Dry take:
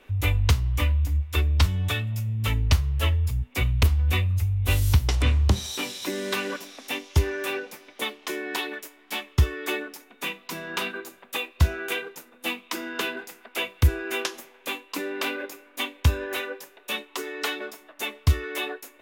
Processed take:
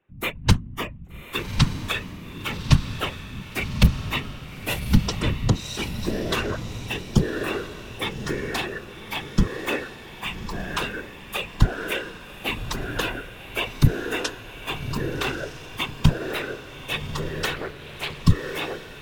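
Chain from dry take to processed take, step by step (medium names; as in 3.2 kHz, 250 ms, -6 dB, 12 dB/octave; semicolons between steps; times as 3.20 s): local Wiener filter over 9 samples; spectral noise reduction 20 dB; whisper effect; on a send: echo that smears into a reverb 1180 ms, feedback 42%, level -9 dB; 17.54–18.24 s: on the sum: loudspeaker Doppler distortion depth 0.48 ms; trim +3 dB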